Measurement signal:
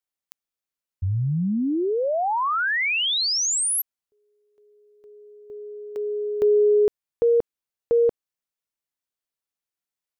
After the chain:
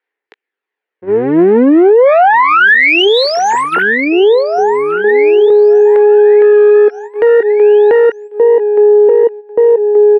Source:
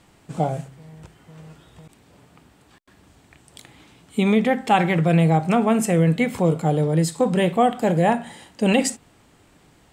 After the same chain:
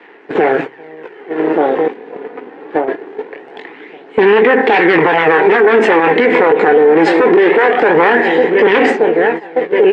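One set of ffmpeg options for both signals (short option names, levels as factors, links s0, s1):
-filter_complex "[0:a]aeval=exprs='if(lt(val(0),0),0.251*val(0),val(0))':c=same,asplit=2[s0][s1];[s1]aecho=0:1:1177|2354|3531|4708:0.112|0.0583|0.0303|0.0158[s2];[s0][s2]amix=inputs=2:normalize=0,aeval=exprs='0.668*sin(PI/2*3.55*val(0)/0.668)':c=same,acrossover=split=890[s3][s4];[s3]dynaudnorm=f=250:g=5:m=4.47[s5];[s4]flanger=delay=18:depth=5.6:speed=2.9[s6];[s5][s6]amix=inputs=2:normalize=0,crystalizer=i=4.5:c=0,highpass=f=350:w=0.5412,highpass=f=350:w=1.3066,equalizer=f=430:t=q:w=4:g=8,equalizer=f=610:t=q:w=4:g=-10,equalizer=f=1200:t=q:w=4:g=-7,equalizer=f=1800:t=q:w=4:g=6,lowpass=f=2200:w=0.5412,lowpass=f=2200:w=1.3066,aphaser=in_gain=1:out_gain=1:delay=4.1:decay=0.35:speed=0.23:type=sinusoidal,agate=range=0.282:threshold=0.0316:ratio=16:release=231:detection=peak,acompressor=threshold=0.141:ratio=2.5:attack=1:release=70:knee=6:detection=rms,alimiter=level_in=5.96:limit=0.891:release=50:level=0:latency=1,volume=0.891"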